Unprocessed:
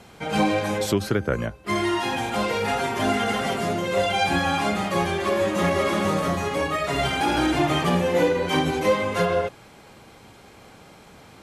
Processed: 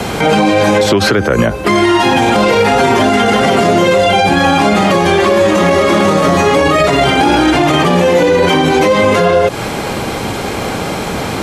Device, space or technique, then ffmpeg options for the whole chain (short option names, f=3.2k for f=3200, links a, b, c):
mastering chain: -filter_complex "[0:a]equalizer=f=380:t=o:w=2.2:g=3,acrossover=split=170|580|3900|7800[a][b][c][d][e];[a]acompressor=threshold=-41dB:ratio=4[f];[b]acompressor=threshold=-30dB:ratio=4[g];[c]acompressor=threshold=-31dB:ratio=4[h];[d]acompressor=threshold=-46dB:ratio=4[i];[e]acompressor=threshold=-60dB:ratio=4[j];[f][g][h][i][j]amix=inputs=5:normalize=0,acompressor=threshold=-31dB:ratio=2.5,alimiter=level_in=29dB:limit=-1dB:release=50:level=0:latency=1,volume=-1dB"